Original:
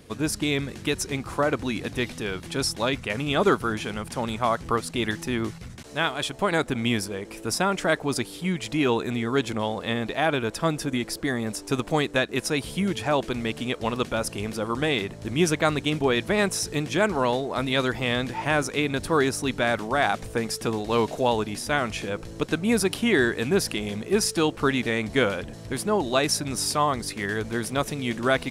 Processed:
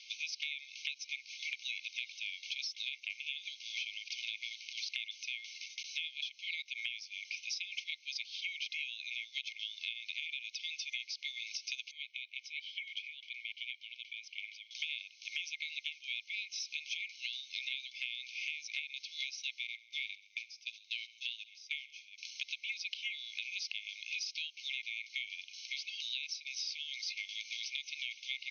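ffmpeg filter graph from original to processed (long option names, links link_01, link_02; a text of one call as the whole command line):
ffmpeg -i in.wav -filter_complex "[0:a]asettb=1/sr,asplit=3[link_01][link_02][link_03];[link_01]atrim=end=3.584[link_04];[link_02]atrim=start=3.58:end=4.73,asetpts=PTS-STARTPTS,afade=type=in:duration=0.004:curve=qsin,afade=type=out:start_time=1.146:duration=0.004:curve=qsin,acrusher=bits=5:mode=log:mix=0:aa=0.000001,lowpass=5900[link_05];[link_03]atrim=start=4.726[link_06];[link_04][link_05]acrossfade=duration=0.004:curve1=hsin:curve2=qsin[link_07];[link_07][link_06]acrossfade=duration=0.004:curve1=qsin:curve2=hsin,asettb=1/sr,asplit=3[link_08][link_09][link_10];[link_08]atrim=end=11.914[link_11];[link_09]atrim=start=11.91:end=14.71,asetpts=PTS-STARTPTS,afade=type=in:duration=0.004:curve=qsin,afade=type=out:start_time=2.796:duration=0.004:curve=qsin,lowshelf=frequency=240:gain=-11.5,acompressor=threshold=-26dB:ratio=10:attack=3.2:release=140:knee=1:detection=peak,asplit=3[link_12][link_13][link_14];[link_12]bandpass=frequency=270:width_type=q:width=8,volume=0dB[link_15];[link_13]bandpass=frequency=2290:width_type=q:width=8,volume=-6dB[link_16];[link_14]bandpass=frequency=3010:width_type=q:width=8,volume=-9dB[link_17];[link_15][link_16][link_17]amix=inputs=3:normalize=0[link_18];[link_10]atrim=start=14.706[link_19];[link_11][link_18]acrossfade=duration=0.004:curve1=hsin:curve2=qsin[link_20];[link_20][link_19]acrossfade=duration=0.004:curve1=qsin:curve2=hsin,asettb=1/sr,asplit=3[link_21][link_22][link_23];[link_21]atrim=end=19.674[link_24];[link_22]atrim=start=19.67:end=22.18,asetpts=PTS-STARTPTS,afade=type=in:duration=0.004:curve=qsin,afade=type=out:start_time=2.506:duration=0.004:curve=qsin,agate=range=-23dB:threshold=-25dB:ratio=16:release=100:detection=peak,acrossover=split=4500[link_25][link_26];[link_26]acompressor=threshold=-55dB:ratio=4:attack=1:release=60[link_27];[link_25][link_27]amix=inputs=2:normalize=0,aecho=1:1:69|138|207:0.0841|0.0362|0.0156,atrim=end_sample=110691[link_28];[link_23]atrim=start=22.176[link_29];[link_24][link_28]acrossfade=duration=0.004:curve1=hsin:curve2=qsin[link_30];[link_30][link_29]acrossfade=duration=0.004:curve1=qsin:curve2=hsin,acrossover=split=4700[link_31][link_32];[link_32]acompressor=threshold=-48dB:ratio=4:attack=1:release=60[link_33];[link_31][link_33]amix=inputs=2:normalize=0,afftfilt=real='re*between(b*sr/4096,2100,6500)':imag='im*between(b*sr/4096,2100,6500)':win_size=4096:overlap=0.75,acompressor=threshold=-44dB:ratio=12,volume=7.5dB" out.wav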